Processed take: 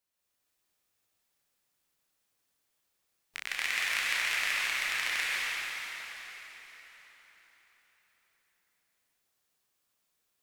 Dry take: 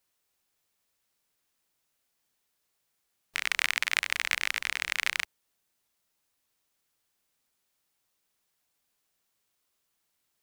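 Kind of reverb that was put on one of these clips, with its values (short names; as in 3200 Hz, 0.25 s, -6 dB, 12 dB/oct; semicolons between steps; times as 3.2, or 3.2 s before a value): plate-style reverb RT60 4.5 s, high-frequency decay 0.85×, pre-delay 0.115 s, DRR -7.5 dB; gain -8.5 dB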